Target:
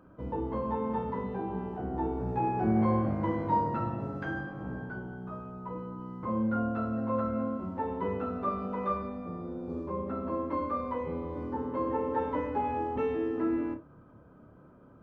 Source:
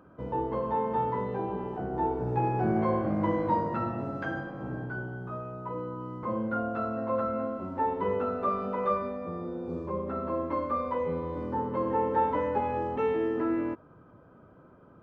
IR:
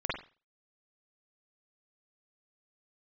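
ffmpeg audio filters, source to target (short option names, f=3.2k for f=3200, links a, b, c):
-filter_complex "[0:a]asplit=2[a][b];[1:a]atrim=start_sample=2205,asetrate=74970,aresample=44100,lowshelf=f=460:g=11.5[c];[b][c]afir=irnorm=-1:irlink=0,volume=-10.5dB[d];[a][d]amix=inputs=2:normalize=0,volume=-4.5dB"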